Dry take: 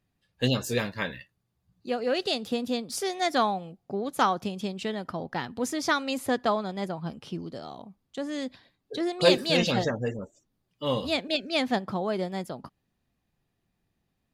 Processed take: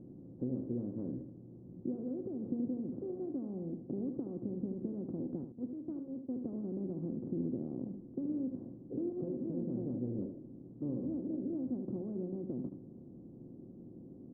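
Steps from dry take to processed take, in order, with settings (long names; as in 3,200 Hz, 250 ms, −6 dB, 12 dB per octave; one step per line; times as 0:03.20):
compressor on every frequency bin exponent 0.4
0:05.44–0:06.41: downward expander −15 dBFS
downward compressor, threshold −21 dBFS, peak gain reduction 9.5 dB
transistor ladder low-pass 340 Hz, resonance 50%
single-tap delay 76 ms −8 dB
level −2.5 dB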